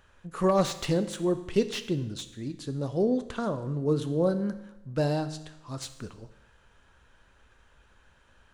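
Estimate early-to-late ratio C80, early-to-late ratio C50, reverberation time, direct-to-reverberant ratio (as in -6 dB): 14.5 dB, 12.0 dB, 0.90 s, 9.5 dB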